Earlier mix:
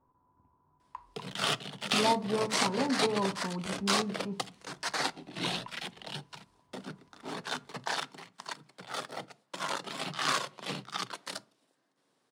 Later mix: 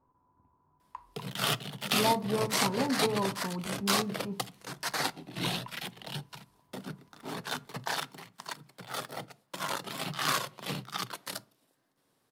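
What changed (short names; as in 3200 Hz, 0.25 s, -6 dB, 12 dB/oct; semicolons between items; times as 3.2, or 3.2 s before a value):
background: remove HPF 180 Hz 12 dB/oct; master: remove polynomial smoothing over 9 samples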